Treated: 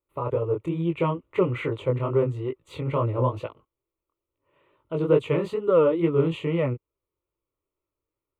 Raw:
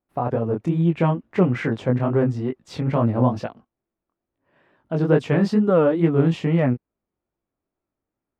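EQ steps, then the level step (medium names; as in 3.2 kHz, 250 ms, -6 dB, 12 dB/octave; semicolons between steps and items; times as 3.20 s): static phaser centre 1.1 kHz, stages 8; 0.0 dB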